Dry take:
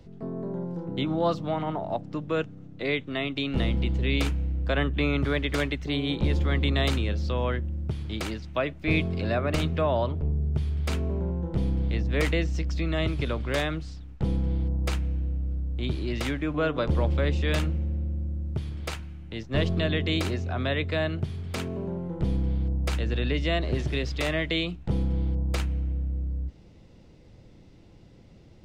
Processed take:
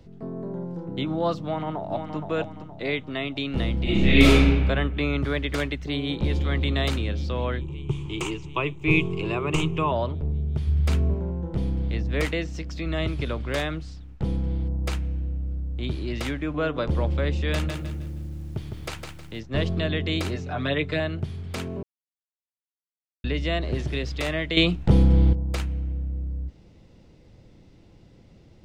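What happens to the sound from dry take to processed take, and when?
1.42–2.15 echo throw 0.47 s, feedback 40%, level -6.5 dB
3.83–4.47 reverb throw, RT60 1.4 s, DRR -11.5 dB
5.85–6.26 echo throw 0.37 s, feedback 80%, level -13 dB
7.61–9.92 ripple EQ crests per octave 0.7, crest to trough 16 dB
10.67–11.14 bell 100 Hz +9 dB 1.6 oct
12.26–12.86 low shelf 95 Hz -9.5 dB
17.53–19.4 lo-fi delay 0.157 s, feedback 35%, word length 9-bit, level -5 dB
20.35–21 comb 6.8 ms, depth 78%
21.83–23.24 mute
24.57–25.33 gain +9.5 dB

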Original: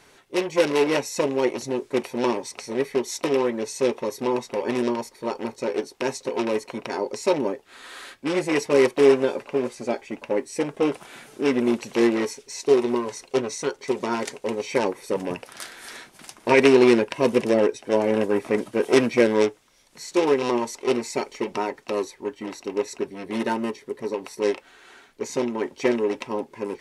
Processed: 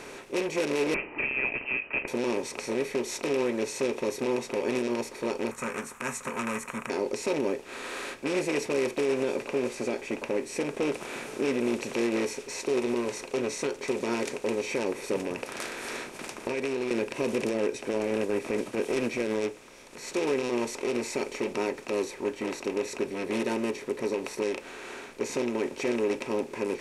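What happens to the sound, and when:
0.94–2.08 inverted band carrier 2900 Hz
5.51–6.9 EQ curve 230 Hz 0 dB, 330 Hz -24 dB, 830 Hz -4 dB, 1200 Hz +15 dB, 4800 Hz -18 dB, 7200 Hz +8 dB
15.19–16.91 compressor, threshold -29 dBFS
17.93–20.07 transient shaper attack -10 dB, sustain -4 dB
whole clip: per-bin compression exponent 0.6; dynamic EQ 1100 Hz, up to -5 dB, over -29 dBFS, Q 0.78; limiter -11.5 dBFS; gain -6.5 dB

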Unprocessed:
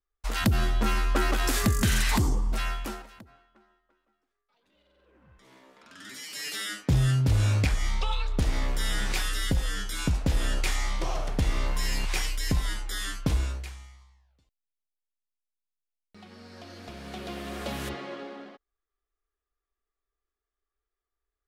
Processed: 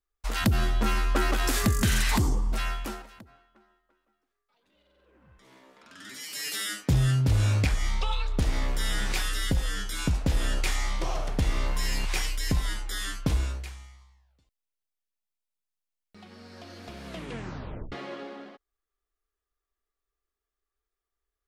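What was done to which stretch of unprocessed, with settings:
6.19–6.91 high shelf 11000 Hz -> 6300 Hz +7.5 dB
17.06 tape stop 0.86 s

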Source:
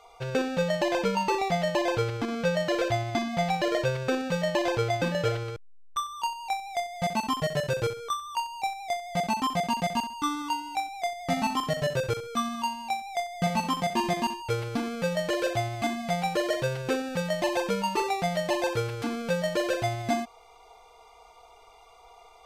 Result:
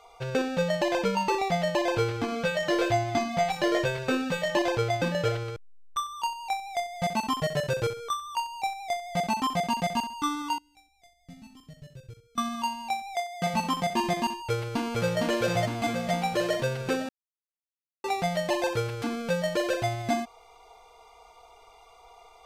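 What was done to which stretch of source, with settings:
1.94–4.62 doubler 20 ms -4 dB
10.58–12.38 passive tone stack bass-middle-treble 10-0-1
13.14–13.54 HPF 230 Hz 6 dB/oct
14.29–15.19 echo throw 0.46 s, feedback 60%, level -1.5 dB
17.09–18.04 mute

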